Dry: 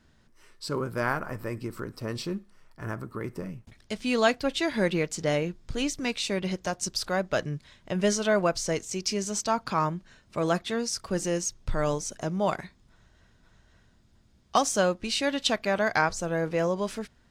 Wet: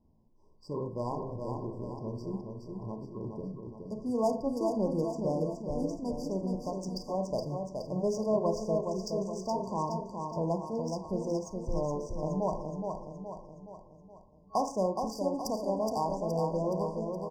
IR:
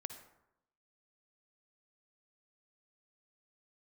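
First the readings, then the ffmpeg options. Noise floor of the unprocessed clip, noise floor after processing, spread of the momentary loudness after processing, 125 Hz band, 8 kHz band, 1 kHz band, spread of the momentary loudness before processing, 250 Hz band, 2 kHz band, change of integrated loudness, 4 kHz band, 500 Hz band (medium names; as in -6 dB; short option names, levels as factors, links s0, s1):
-62 dBFS, -58 dBFS, 11 LU, -3.0 dB, -15.5 dB, -4.5 dB, 13 LU, -3.0 dB, under -40 dB, -5.0 dB, -16.5 dB, -3.0 dB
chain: -filter_complex "[1:a]atrim=start_sample=2205,asetrate=79380,aresample=44100[s0];[0:a][s0]afir=irnorm=-1:irlink=0,adynamicsmooth=sensitivity=5:basefreq=2200,aecho=1:1:420|840|1260|1680|2100|2520:0.562|0.281|0.141|0.0703|0.0351|0.0176,afftfilt=real='re*(1-between(b*sr/4096,1100,4600))':imag='im*(1-between(b*sr/4096,1100,4600))':win_size=4096:overlap=0.75,volume=1.5"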